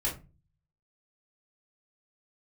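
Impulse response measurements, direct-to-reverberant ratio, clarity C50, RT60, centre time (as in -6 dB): -5.5 dB, 10.0 dB, 0.30 s, 22 ms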